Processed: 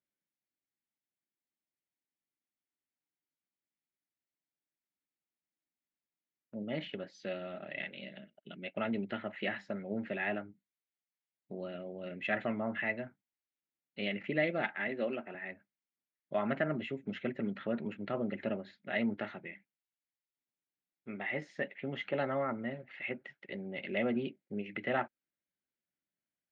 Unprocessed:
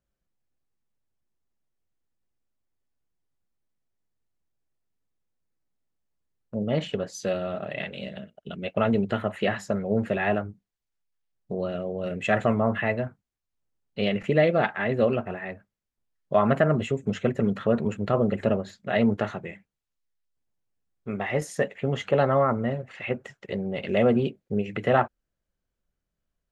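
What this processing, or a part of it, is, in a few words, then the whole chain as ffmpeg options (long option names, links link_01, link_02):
kitchen radio: -filter_complex "[0:a]highpass=220,equalizer=frequency=300:width_type=q:width=4:gain=3,equalizer=frequency=460:width_type=q:width=4:gain=-9,equalizer=frequency=710:width_type=q:width=4:gain=-4,equalizer=frequency=1100:width_type=q:width=4:gain=-9,equalizer=frequency=2100:width_type=q:width=4:gain=6,lowpass=frequency=4100:width=0.5412,lowpass=frequency=4100:width=1.3066,asettb=1/sr,asplit=3[link_01][link_02][link_03];[link_01]atrim=end=14.884[link_04];[link_02]atrim=start=14.88:end=15.35,asetpts=PTS-STARTPTS,afade=type=in:duration=0.004:curve=qsin,afade=type=out:start_time=0.466:duration=0.004:curve=qsin,highpass=210[link_05];[link_03]atrim=start=15.346[link_06];[link_04][link_05]acrossfade=duration=0.004:curve1=hsin:curve2=qsin[link_07];[link_07][link_06]acrossfade=duration=0.004:curve1=qsin:curve2=hsin,volume=-8dB"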